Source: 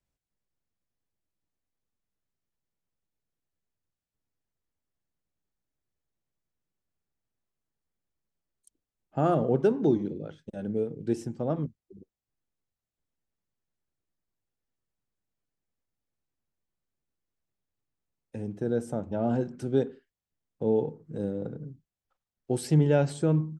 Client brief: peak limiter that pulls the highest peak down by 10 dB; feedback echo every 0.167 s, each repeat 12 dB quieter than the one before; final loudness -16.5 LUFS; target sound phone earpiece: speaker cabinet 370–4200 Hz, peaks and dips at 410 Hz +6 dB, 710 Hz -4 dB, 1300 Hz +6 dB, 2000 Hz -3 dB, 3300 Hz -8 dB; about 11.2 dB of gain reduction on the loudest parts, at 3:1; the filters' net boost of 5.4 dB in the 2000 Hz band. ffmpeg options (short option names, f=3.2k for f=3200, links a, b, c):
-af "equalizer=f=2k:t=o:g=6.5,acompressor=threshold=-33dB:ratio=3,alimiter=level_in=5dB:limit=-24dB:level=0:latency=1,volume=-5dB,highpass=370,equalizer=f=410:t=q:w=4:g=6,equalizer=f=710:t=q:w=4:g=-4,equalizer=f=1.3k:t=q:w=4:g=6,equalizer=f=2k:t=q:w=4:g=-3,equalizer=f=3.3k:t=q:w=4:g=-8,lowpass=f=4.2k:w=0.5412,lowpass=f=4.2k:w=1.3066,aecho=1:1:167|334|501:0.251|0.0628|0.0157,volume=25.5dB"